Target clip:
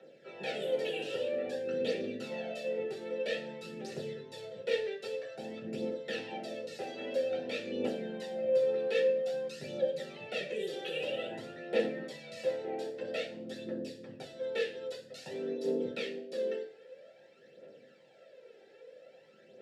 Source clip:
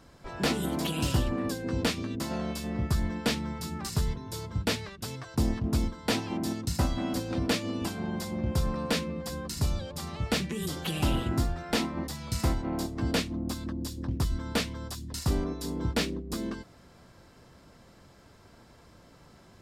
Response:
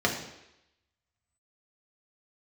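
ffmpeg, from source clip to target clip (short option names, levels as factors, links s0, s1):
-filter_complex "[0:a]highshelf=f=3500:g=8.5,alimiter=limit=0.0891:level=0:latency=1:release=23,aphaser=in_gain=1:out_gain=1:delay=2.6:decay=0.62:speed=0.51:type=triangular,asplit=3[s0][s1][s2];[s0]bandpass=f=530:t=q:w=8,volume=1[s3];[s1]bandpass=f=1840:t=q:w=8,volume=0.501[s4];[s2]bandpass=f=2480:t=q:w=8,volume=0.355[s5];[s3][s4][s5]amix=inputs=3:normalize=0[s6];[1:a]atrim=start_sample=2205,asetrate=83790,aresample=44100[s7];[s6][s7]afir=irnorm=-1:irlink=0"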